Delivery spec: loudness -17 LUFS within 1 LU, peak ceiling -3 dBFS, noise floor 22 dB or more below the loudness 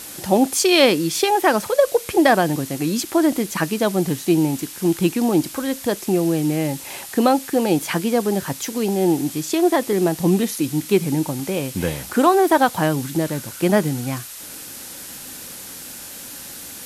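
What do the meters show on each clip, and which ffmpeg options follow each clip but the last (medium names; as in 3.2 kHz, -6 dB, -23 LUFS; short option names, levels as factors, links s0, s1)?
noise floor -36 dBFS; noise floor target -42 dBFS; loudness -19.5 LUFS; peak level -2.5 dBFS; loudness target -17.0 LUFS
-> -af "afftdn=nr=6:nf=-36"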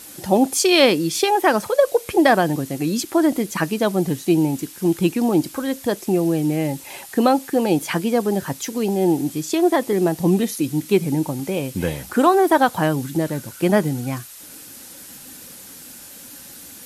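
noise floor -40 dBFS; noise floor target -42 dBFS
-> -af "afftdn=nr=6:nf=-40"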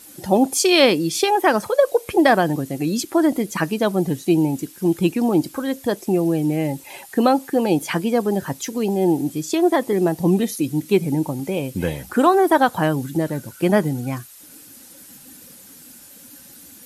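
noise floor -44 dBFS; loudness -19.5 LUFS; peak level -2.5 dBFS; loudness target -17.0 LUFS
-> -af "volume=1.33,alimiter=limit=0.708:level=0:latency=1"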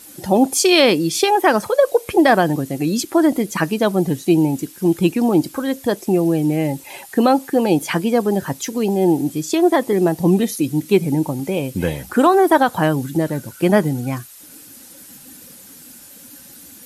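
loudness -17.5 LUFS; peak level -3.0 dBFS; noise floor -42 dBFS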